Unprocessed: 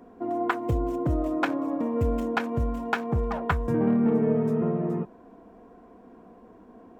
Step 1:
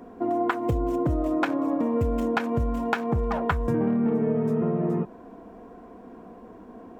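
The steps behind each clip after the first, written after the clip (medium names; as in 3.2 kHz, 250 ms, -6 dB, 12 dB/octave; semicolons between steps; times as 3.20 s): compression 4:1, threshold -27 dBFS, peak gain reduction 7.5 dB; trim +5.5 dB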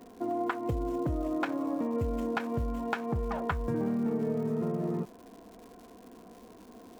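crackle 300 per s -39 dBFS; trim -6.5 dB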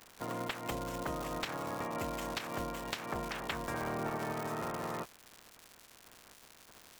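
spectral peaks clipped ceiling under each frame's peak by 29 dB; trim -6.5 dB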